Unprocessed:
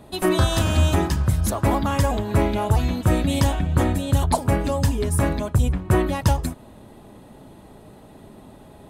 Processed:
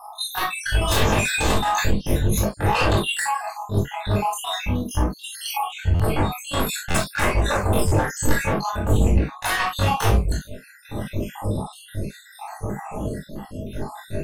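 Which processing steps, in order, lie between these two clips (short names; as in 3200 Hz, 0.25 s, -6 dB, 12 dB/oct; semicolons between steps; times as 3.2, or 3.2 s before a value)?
random spectral dropouts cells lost 73%; compressor 1.5:1, threshold -43 dBFS, peak gain reduction 10.5 dB; random-step tremolo, depth 70%; sine folder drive 19 dB, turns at -16.5 dBFS; granular stretch 1.6×, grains 0.108 s; reverb, pre-delay 3 ms, DRR -2 dB; stuck buffer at 5.95/6.9/7.87, samples 512, times 3; gain -5.5 dB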